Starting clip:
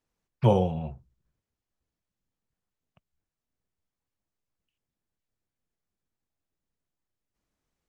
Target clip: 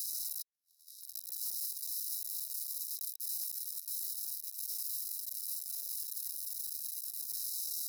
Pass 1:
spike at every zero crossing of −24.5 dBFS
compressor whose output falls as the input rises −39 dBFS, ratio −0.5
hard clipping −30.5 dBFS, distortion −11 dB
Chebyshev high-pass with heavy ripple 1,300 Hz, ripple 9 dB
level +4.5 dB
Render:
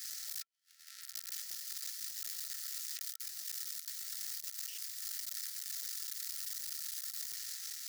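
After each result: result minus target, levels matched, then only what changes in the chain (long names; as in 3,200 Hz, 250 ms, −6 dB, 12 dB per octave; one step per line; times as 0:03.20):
4,000 Hz band +4.5 dB; spike at every zero crossing: distortion +6 dB
change: Chebyshev high-pass with heavy ripple 3,800 Hz, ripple 9 dB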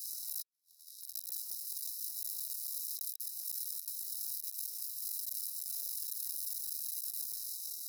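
spike at every zero crossing: distortion +6 dB
change: spike at every zero crossing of −30.5 dBFS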